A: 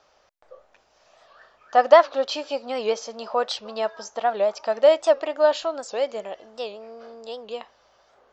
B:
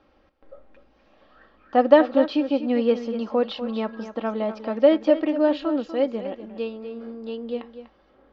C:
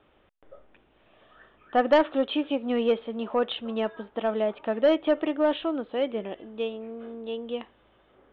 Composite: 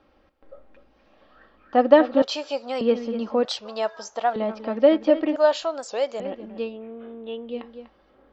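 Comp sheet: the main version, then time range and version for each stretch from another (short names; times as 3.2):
B
2.22–2.81 from A
3.45–4.36 from A
5.36–6.2 from A
6.71–7.53 from C, crossfade 0.16 s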